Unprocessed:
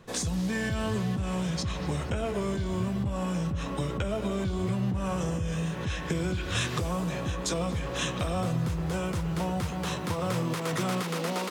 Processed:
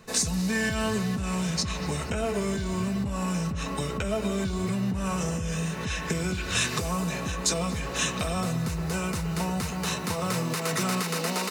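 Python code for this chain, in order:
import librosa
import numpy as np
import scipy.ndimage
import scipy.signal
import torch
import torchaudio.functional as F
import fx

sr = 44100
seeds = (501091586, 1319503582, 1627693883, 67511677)

y = fx.high_shelf(x, sr, hz=2200.0, db=8.0)
y = fx.notch(y, sr, hz=3300.0, q=6.9)
y = y + 0.38 * np.pad(y, (int(4.6 * sr / 1000.0), 0))[:len(y)]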